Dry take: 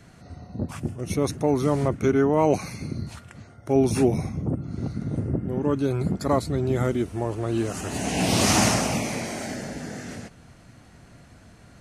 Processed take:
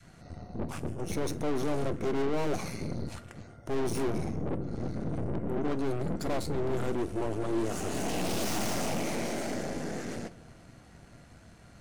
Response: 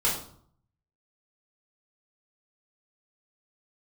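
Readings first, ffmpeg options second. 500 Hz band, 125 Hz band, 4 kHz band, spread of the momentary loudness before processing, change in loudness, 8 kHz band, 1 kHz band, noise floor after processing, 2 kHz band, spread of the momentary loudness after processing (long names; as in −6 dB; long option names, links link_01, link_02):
−7.5 dB, −9.5 dB, −9.5 dB, 15 LU, −8.5 dB, −10.5 dB, −8.0 dB, −54 dBFS, −8.0 dB, 10 LU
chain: -filter_complex "[0:a]aeval=exprs='(tanh(50.1*val(0)+0.75)-tanh(0.75))/50.1':channel_layout=same,adynamicequalizer=threshold=0.00282:dfrequency=400:dqfactor=0.82:tfrequency=400:tqfactor=0.82:attack=5:release=100:ratio=0.375:range=3.5:mode=boostabove:tftype=bell,asplit=2[link_01][link_02];[1:a]atrim=start_sample=2205,asetrate=61740,aresample=44100[link_03];[link_02][link_03]afir=irnorm=-1:irlink=0,volume=-20.5dB[link_04];[link_01][link_04]amix=inputs=2:normalize=0"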